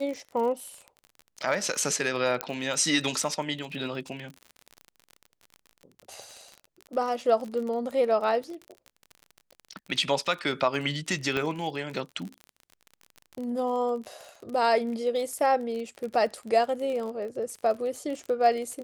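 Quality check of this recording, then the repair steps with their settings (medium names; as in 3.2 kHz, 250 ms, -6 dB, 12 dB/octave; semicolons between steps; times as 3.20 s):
crackle 38 per s -34 dBFS
2.41 s: pop -10 dBFS
11.37 s: pop -16 dBFS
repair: de-click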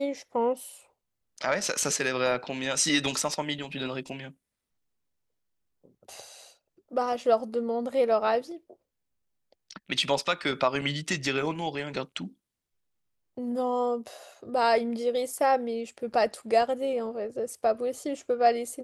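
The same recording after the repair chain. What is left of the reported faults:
nothing left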